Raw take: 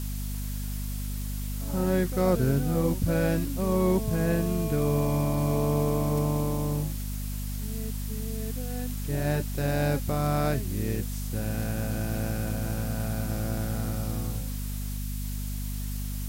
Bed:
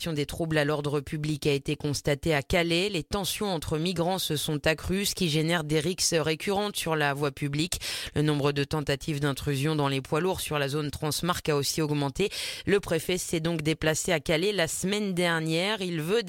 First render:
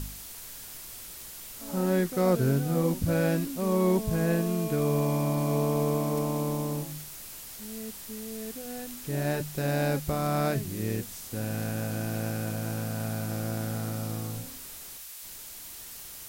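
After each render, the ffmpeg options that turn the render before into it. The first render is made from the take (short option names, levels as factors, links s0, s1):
-af "bandreject=f=50:t=h:w=4,bandreject=f=100:t=h:w=4,bandreject=f=150:t=h:w=4,bandreject=f=200:t=h:w=4,bandreject=f=250:t=h:w=4"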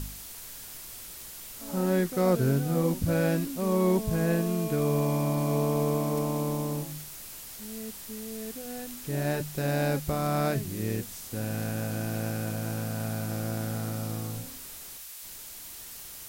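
-af anull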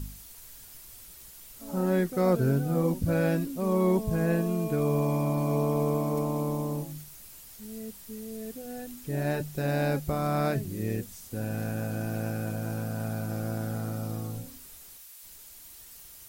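-af "afftdn=nr=8:nf=-44"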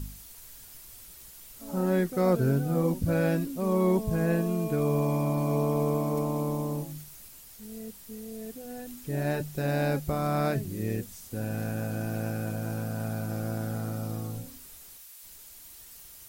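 -filter_complex "[0:a]asettb=1/sr,asplit=3[s0][s1][s2];[s0]atrim=end=7.284[s3];[s1]atrim=start=7.28:end=8.86,asetpts=PTS-STARTPTS,afade=t=in:d=0.004:c=qsin,afade=t=out:st=1.576:d=0.004:c=qsin,tremolo=f=260:d=0.261[s4];[s2]atrim=start=8.856[s5];[s3][s4]acrossfade=d=0.004:c1=hsin:c2=qsin[s6];[s6][s5]acrossfade=d=0.004:c1=qsin:c2=hsin"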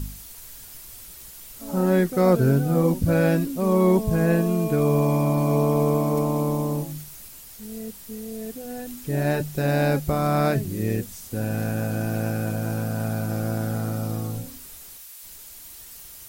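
-af "volume=2"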